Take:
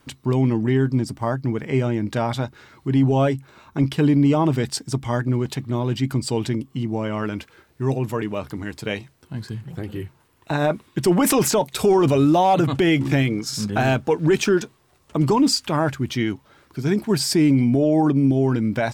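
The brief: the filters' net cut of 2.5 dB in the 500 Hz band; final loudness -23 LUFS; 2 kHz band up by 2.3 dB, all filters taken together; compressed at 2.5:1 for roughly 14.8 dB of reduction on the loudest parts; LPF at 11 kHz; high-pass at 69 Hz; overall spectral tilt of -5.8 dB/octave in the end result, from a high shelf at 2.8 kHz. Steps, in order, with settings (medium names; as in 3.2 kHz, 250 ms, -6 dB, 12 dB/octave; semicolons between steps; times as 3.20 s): high-pass 69 Hz; low-pass 11 kHz; peaking EQ 500 Hz -3.5 dB; peaking EQ 2 kHz +5.5 dB; treble shelf 2.8 kHz -6 dB; compression 2.5:1, threshold -38 dBFS; trim +13 dB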